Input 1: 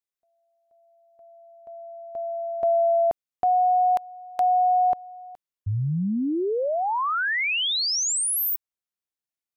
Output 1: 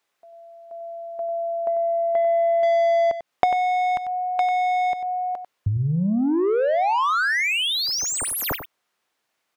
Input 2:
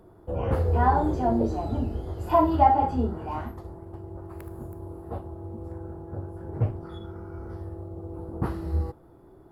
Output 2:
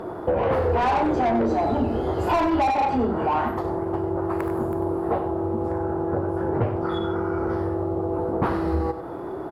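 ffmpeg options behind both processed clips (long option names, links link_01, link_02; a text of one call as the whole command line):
ffmpeg -i in.wav -filter_complex "[0:a]asplit=2[link_01][link_02];[link_02]highpass=frequency=720:poles=1,volume=28dB,asoftclip=type=tanh:threshold=-6dB[link_03];[link_01][link_03]amix=inputs=2:normalize=0,lowpass=frequency=1400:poles=1,volume=-6dB,acompressor=threshold=-33dB:ratio=2.5:attack=50:release=292:detection=peak,asplit=2[link_04][link_05];[link_05]aecho=0:1:95:0.299[link_06];[link_04][link_06]amix=inputs=2:normalize=0,volume=5.5dB" out.wav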